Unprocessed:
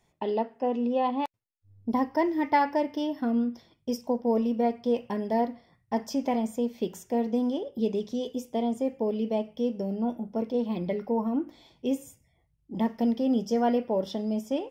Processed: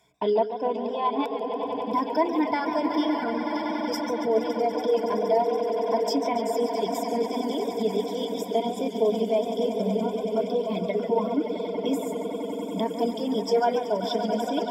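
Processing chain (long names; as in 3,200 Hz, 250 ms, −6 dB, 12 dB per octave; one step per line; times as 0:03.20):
high-pass filter 57 Hz
low-shelf EQ 200 Hz −7 dB
on a send: echo that builds up and dies away 94 ms, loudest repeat 8, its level −11.5 dB
on the sum: brickwall limiter −19.5 dBFS, peak gain reduction 7 dB
reversed playback
upward compression, threshold −37 dBFS
reversed playback
reverb reduction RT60 2 s
EQ curve with evenly spaced ripples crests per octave 1.7, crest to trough 13 dB
feedback echo with a swinging delay time 140 ms, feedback 60%, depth 118 cents, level −11 dB
level +4 dB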